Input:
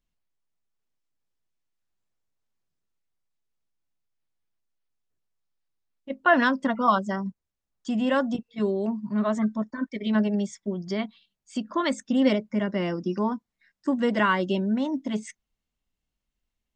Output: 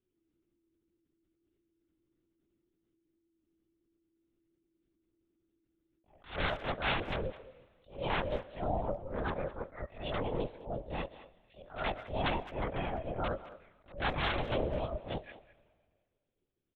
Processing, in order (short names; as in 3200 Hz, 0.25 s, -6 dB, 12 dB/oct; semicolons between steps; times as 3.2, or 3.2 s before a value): short-time reversal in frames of 42 ms; in parallel at -2 dB: compressor 12:1, threshold -35 dBFS, peak gain reduction 18 dB; on the sum: wrapped overs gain 17 dB; ring modulator 330 Hz; on a send at -21 dB: reverb RT60 1.8 s, pre-delay 70 ms; on the sum: LPC vocoder at 8 kHz whisper; speakerphone echo 0.21 s, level -15 dB; attack slew limiter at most 160 dB/s; gain -3.5 dB